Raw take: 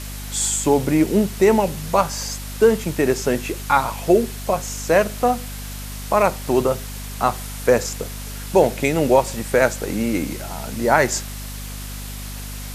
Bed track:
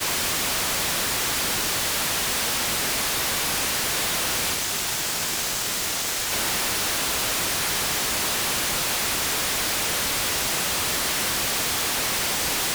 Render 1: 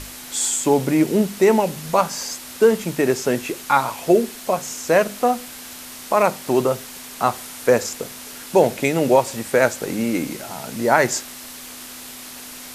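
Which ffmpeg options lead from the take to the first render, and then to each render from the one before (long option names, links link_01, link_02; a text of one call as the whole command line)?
ffmpeg -i in.wav -af "bandreject=frequency=50:width_type=h:width=6,bandreject=frequency=100:width_type=h:width=6,bandreject=frequency=150:width_type=h:width=6,bandreject=frequency=200:width_type=h:width=6" out.wav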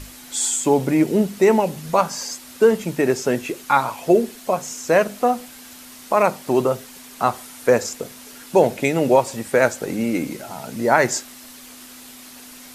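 ffmpeg -i in.wav -af "afftdn=noise_reduction=6:noise_floor=-37" out.wav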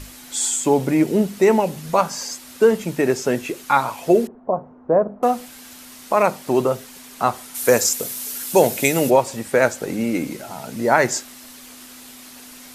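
ffmpeg -i in.wav -filter_complex "[0:a]asettb=1/sr,asplit=3[link_01][link_02][link_03];[link_01]atrim=end=4.274[link_04];[link_02]atrim=start=4.27:end=5.23,asetpts=PTS-STARTPTS,afade=type=in:duration=0.004:curve=qsin,afade=type=out:start_time=0.956:duration=0.004:curve=qsin,lowpass=frequency=1000:width=0.5412,lowpass=frequency=1000:width=1.3066[link_05];[link_03]atrim=start=5.226[link_06];[link_04][link_05]acrossfade=duration=0.004:curve1=hsin:curve2=qsin[link_07];[link_07][link_06]acrossfade=duration=0.004:curve1=qsin:curve2=hsin,asplit=3[link_08][link_09][link_10];[link_08]afade=type=out:start_time=7.54:duration=0.02[link_11];[link_09]aemphasis=mode=production:type=75kf,afade=type=in:start_time=7.54:duration=0.02,afade=type=out:start_time=9.09:duration=0.02[link_12];[link_10]afade=type=in:start_time=9.09:duration=0.02[link_13];[link_11][link_12][link_13]amix=inputs=3:normalize=0" out.wav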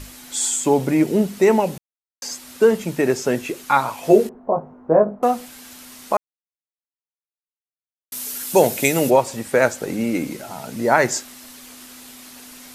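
ffmpeg -i in.wav -filter_complex "[0:a]asettb=1/sr,asplit=3[link_01][link_02][link_03];[link_01]atrim=end=4.014[link_04];[link_02]atrim=start=4.01:end=5.16,asetpts=PTS-STARTPTS,afade=type=in:duration=0.004:curve=qsin,afade=type=out:start_time=1.146:duration=0.004:curve=qsin,asplit=2[link_05][link_06];[link_06]adelay=19,volume=-3dB[link_07];[link_05][link_07]amix=inputs=2:normalize=0,atrim=end_sample=50715[link_08];[link_03]atrim=start=5.156[link_09];[link_04][link_08]acrossfade=duration=0.004:curve1=hsin:curve2=qsin[link_10];[link_10][link_09]acrossfade=duration=0.004:curve1=qsin:curve2=hsin,asplit=5[link_11][link_12][link_13][link_14][link_15];[link_11]atrim=end=1.78,asetpts=PTS-STARTPTS,afade=type=out:start_time=1.776:duration=0.004:curve=hsin[link_16];[link_12]atrim=start=1.78:end=2.22,asetpts=PTS-STARTPTS,volume=0[link_17];[link_13]atrim=start=2.22:end=6.17,asetpts=PTS-STARTPTS,afade=type=in:duration=0.004:curve=hsin,afade=type=out:start_time=3.946:duration=0.004:curve=hsin[link_18];[link_14]atrim=start=6.17:end=8.12,asetpts=PTS-STARTPTS,volume=0[link_19];[link_15]atrim=start=8.12,asetpts=PTS-STARTPTS,afade=type=in:duration=0.004:curve=hsin[link_20];[link_16][link_17][link_18][link_19][link_20]concat=n=5:v=0:a=1" out.wav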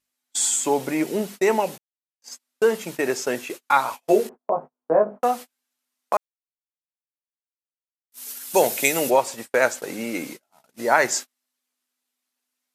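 ffmpeg -i in.wav -af "agate=range=-39dB:threshold=-28dB:ratio=16:detection=peak,highpass=frequency=610:poles=1" out.wav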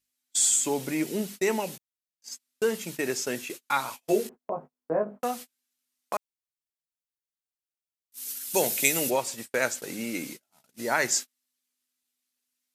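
ffmpeg -i in.wav -af "equalizer=frequency=780:width=0.5:gain=-10" out.wav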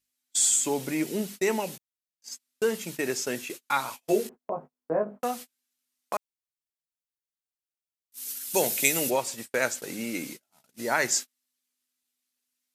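ffmpeg -i in.wav -af anull out.wav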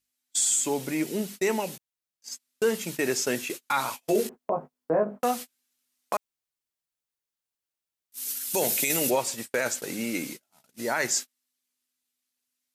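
ffmpeg -i in.wav -af "dynaudnorm=framelen=640:gausssize=9:maxgain=5dB,alimiter=limit=-15dB:level=0:latency=1:release=11" out.wav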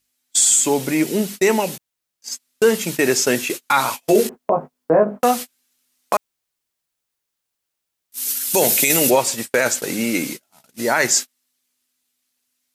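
ffmpeg -i in.wav -af "volume=9.5dB" out.wav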